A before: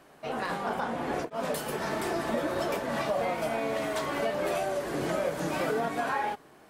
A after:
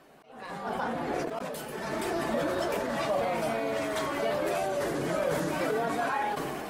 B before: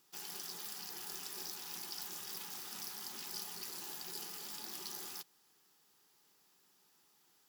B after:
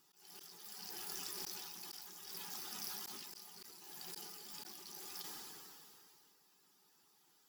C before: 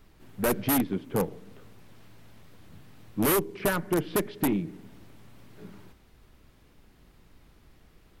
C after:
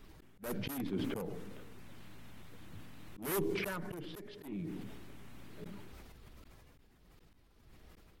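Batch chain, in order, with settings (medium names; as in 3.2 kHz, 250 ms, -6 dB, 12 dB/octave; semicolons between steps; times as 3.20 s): coarse spectral quantiser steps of 15 dB; slow attack 607 ms; decay stretcher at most 21 dB/s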